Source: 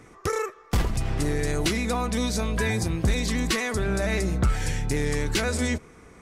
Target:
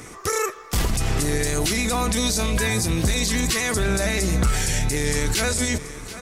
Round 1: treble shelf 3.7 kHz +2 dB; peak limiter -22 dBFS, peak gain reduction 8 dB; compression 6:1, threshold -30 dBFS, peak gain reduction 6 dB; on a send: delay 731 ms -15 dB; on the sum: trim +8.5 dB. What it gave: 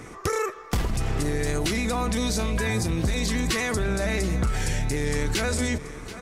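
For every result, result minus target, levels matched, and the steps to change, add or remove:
compression: peak gain reduction +6 dB; 8 kHz band -4.5 dB
remove: compression 6:1, threshold -30 dBFS, peak gain reduction 6 dB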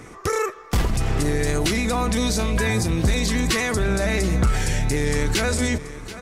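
8 kHz band -5.0 dB
change: treble shelf 3.7 kHz +13 dB

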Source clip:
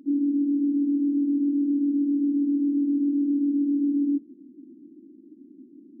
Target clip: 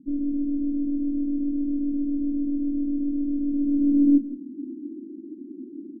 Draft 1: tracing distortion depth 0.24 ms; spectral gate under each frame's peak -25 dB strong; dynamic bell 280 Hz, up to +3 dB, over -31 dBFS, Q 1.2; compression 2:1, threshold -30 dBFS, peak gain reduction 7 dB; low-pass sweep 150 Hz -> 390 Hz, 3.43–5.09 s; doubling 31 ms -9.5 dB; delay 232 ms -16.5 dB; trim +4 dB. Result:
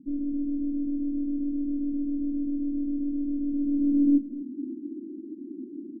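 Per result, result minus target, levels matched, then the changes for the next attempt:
echo 63 ms late; compression: peak gain reduction +3 dB
change: delay 169 ms -16.5 dB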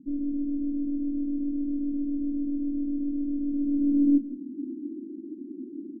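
compression: peak gain reduction +3 dB
change: compression 2:1, threshold -23.5 dBFS, peak gain reduction 3.5 dB

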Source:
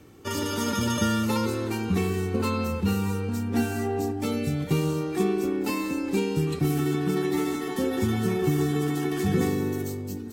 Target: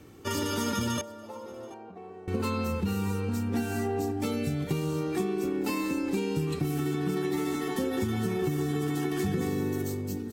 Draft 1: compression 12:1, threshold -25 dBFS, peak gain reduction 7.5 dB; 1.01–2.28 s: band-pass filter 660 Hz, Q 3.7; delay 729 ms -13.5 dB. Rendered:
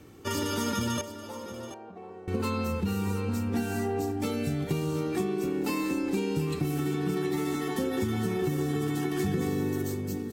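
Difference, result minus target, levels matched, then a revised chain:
echo-to-direct +9 dB
compression 12:1, threshold -25 dBFS, peak gain reduction 7.5 dB; 1.01–2.28 s: band-pass filter 660 Hz, Q 3.7; delay 729 ms -22.5 dB

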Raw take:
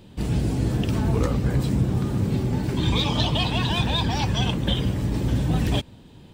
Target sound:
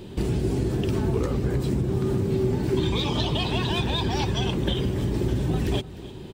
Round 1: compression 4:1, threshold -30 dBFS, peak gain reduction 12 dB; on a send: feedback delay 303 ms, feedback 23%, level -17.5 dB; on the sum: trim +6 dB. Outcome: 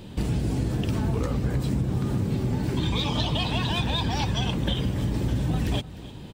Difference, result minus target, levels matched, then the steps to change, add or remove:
500 Hz band -5.5 dB
add after compression: peaking EQ 380 Hz +12.5 dB 0.26 oct

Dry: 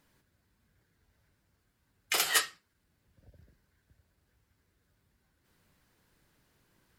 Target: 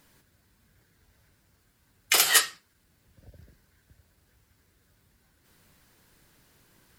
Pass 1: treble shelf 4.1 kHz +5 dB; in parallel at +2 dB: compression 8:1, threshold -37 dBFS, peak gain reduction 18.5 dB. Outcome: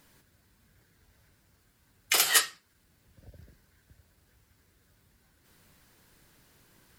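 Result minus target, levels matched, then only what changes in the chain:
compression: peak gain reduction +9.5 dB
change: compression 8:1, threshold -26 dBFS, peak gain reduction 9 dB

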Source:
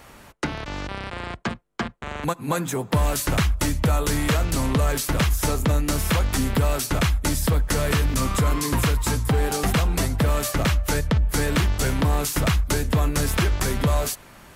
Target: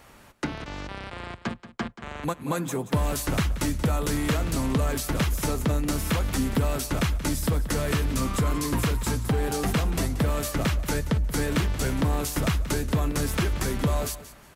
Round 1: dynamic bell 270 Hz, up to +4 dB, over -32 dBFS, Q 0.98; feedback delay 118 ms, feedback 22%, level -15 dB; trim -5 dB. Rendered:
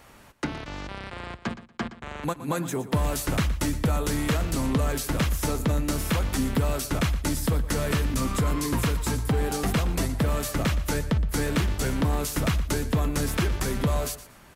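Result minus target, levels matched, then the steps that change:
echo 62 ms early
change: feedback delay 180 ms, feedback 22%, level -15 dB

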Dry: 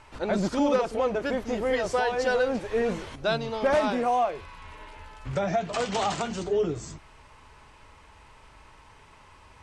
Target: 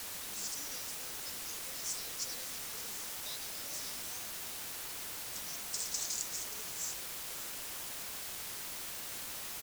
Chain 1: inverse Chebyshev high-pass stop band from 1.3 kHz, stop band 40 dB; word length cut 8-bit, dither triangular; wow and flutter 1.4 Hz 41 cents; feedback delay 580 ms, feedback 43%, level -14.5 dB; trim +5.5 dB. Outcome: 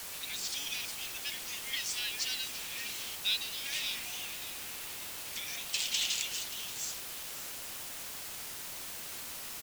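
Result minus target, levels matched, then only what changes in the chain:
2 kHz band +4.0 dB
change: inverse Chebyshev high-pass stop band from 2.8 kHz, stop band 40 dB

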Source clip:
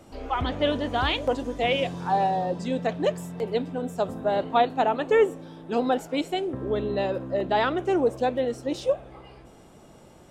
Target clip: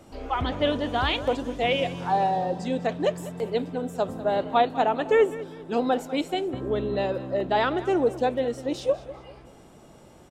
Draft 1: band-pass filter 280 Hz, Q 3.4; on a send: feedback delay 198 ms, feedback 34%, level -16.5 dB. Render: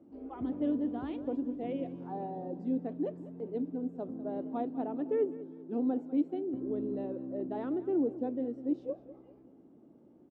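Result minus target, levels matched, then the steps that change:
250 Hz band +7.0 dB
remove: band-pass filter 280 Hz, Q 3.4

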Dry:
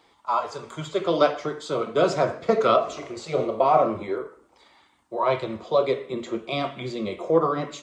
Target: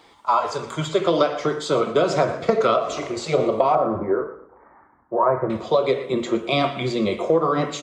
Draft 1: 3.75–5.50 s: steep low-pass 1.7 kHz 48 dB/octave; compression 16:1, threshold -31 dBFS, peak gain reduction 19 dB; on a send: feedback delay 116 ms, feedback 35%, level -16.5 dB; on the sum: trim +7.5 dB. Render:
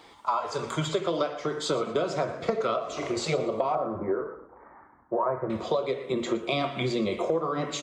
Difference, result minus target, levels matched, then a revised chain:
compression: peak gain reduction +9 dB
3.75–5.50 s: steep low-pass 1.7 kHz 48 dB/octave; compression 16:1, threshold -21.5 dBFS, peak gain reduction 10 dB; on a send: feedback delay 116 ms, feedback 35%, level -16.5 dB; on the sum: trim +7.5 dB

